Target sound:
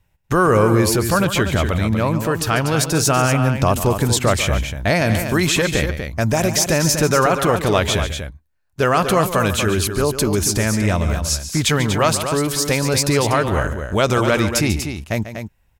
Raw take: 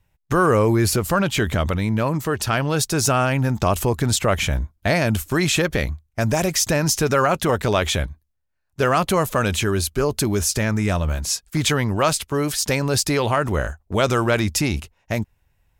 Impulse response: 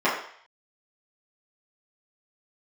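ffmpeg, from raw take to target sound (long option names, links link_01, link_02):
-af "aecho=1:1:142.9|242:0.251|0.398,volume=2dB"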